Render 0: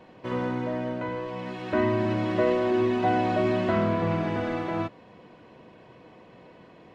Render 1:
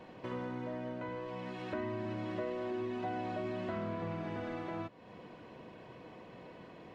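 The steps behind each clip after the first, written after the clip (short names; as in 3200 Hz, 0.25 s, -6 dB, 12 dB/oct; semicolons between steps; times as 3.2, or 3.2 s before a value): compressor 2.5:1, threshold -41 dBFS, peak gain reduction 14.5 dB; gain -1 dB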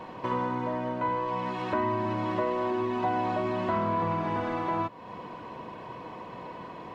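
bell 1000 Hz +11 dB 0.47 oct; gain +7.5 dB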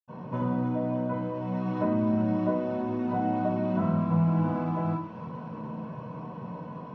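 thin delay 0.299 s, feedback 70%, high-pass 2300 Hz, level -7 dB; reverb RT60 0.45 s, pre-delay 77 ms; gain -8 dB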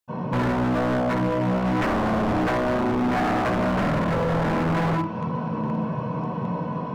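in parallel at 0 dB: limiter -24 dBFS, peak gain reduction 9 dB; on the sum: wavefolder -22.5 dBFS; gain +5 dB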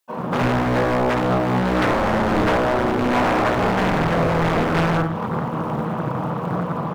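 companded quantiser 8-bit; bands offset in time highs, lows 90 ms, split 230 Hz; Doppler distortion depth 0.9 ms; gain +5 dB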